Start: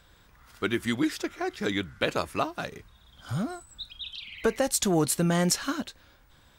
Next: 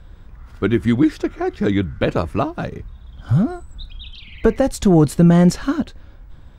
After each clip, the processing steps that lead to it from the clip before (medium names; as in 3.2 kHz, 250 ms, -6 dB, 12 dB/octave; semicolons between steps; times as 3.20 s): tilt EQ -3.5 dB/octave; trim +5.5 dB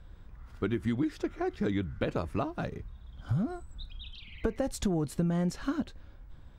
compression 6:1, threshold -17 dBFS, peak gain reduction 9.5 dB; trim -9 dB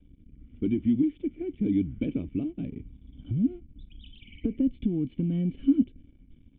rotary cabinet horn 0.9 Hz; waveshaping leveller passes 2; cascade formant filter i; trim +5.5 dB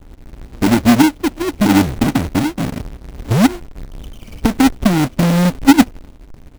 square wave that keeps the level; in parallel at -4.5 dB: sample-and-hold 25×; on the sum: trim +7 dB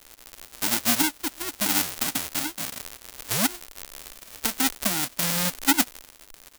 formants flattened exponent 0.1; trim -12.5 dB